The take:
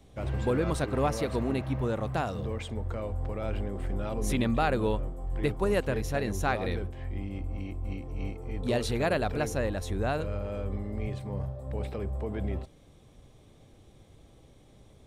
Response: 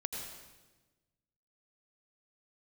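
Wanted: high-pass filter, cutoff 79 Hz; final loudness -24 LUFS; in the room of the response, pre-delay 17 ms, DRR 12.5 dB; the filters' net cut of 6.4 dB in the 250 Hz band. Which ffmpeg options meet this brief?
-filter_complex "[0:a]highpass=79,equalizer=f=250:t=o:g=-8.5,asplit=2[a][b];[1:a]atrim=start_sample=2205,adelay=17[c];[b][c]afir=irnorm=-1:irlink=0,volume=-13.5dB[d];[a][d]amix=inputs=2:normalize=0,volume=10dB"

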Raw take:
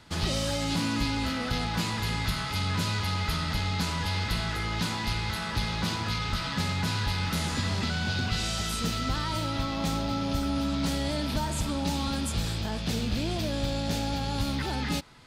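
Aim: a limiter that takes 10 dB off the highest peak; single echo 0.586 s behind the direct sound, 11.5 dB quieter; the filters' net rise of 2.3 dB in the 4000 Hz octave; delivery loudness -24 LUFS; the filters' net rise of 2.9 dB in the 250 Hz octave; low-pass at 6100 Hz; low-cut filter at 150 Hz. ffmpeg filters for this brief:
-af "highpass=150,lowpass=6.1k,equalizer=f=250:t=o:g=4.5,equalizer=f=4k:t=o:g=3.5,alimiter=level_in=0.5dB:limit=-24dB:level=0:latency=1,volume=-0.5dB,aecho=1:1:586:0.266,volume=8dB"

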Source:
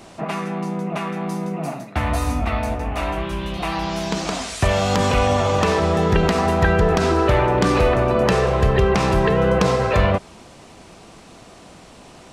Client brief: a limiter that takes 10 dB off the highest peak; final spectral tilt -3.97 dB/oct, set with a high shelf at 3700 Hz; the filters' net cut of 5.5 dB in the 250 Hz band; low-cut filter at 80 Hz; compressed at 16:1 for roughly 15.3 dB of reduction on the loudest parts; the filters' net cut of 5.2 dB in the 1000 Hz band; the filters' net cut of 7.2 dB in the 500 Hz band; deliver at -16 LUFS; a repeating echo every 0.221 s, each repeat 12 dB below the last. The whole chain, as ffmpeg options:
-af "highpass=80,equalizer=f=250:t=o:g=-6.5,equalizer=f=500:t=o:g=-6,equalizer=f=1k:t=o:g=-5,highshelf=f=3.7k:g=7,acompressor=threshold=-32dB:ratio=16,alimiter=level_in=3dB:limit=-24dB:level=0:latency=1,volume=-3dB,aecho=1:1:221|442|663:0.251|0.0628|0.0157,volume=21dB"

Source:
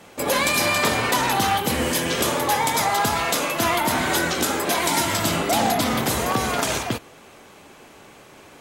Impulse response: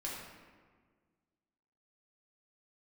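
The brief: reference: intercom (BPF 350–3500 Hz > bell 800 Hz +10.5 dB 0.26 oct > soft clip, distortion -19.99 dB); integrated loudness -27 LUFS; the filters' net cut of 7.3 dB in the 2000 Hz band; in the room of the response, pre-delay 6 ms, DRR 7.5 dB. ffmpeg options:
-filter_complex "[0:a]equalizer=f=2k:t=o:g=-9,asplit=2[a][b];[1:a]atrim=start_sample=2205,adelay=6[c];[b][c]afir=irnorm=-1:irlink=0,volume=-8.5dB[d];[a][d]amix=inputs=2:normalize=0,highpass=350,lowpass=3.5k,equalizer=f=800:t=o:w=0.26:g=10.5,asoftclip=threshold=-7.5dB,volume=-6.5dB"

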